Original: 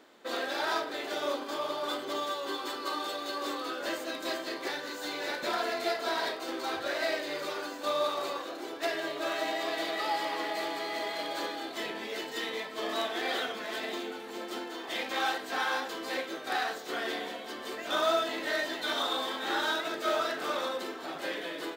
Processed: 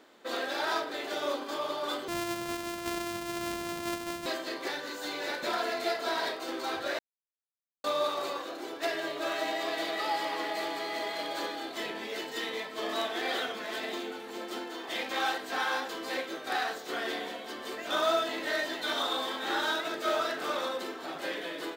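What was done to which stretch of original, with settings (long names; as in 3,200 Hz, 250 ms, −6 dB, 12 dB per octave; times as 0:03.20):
0:02.08–0:04.26: samples sorted by size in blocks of 128 samples
0:06.99–0:07.84: silence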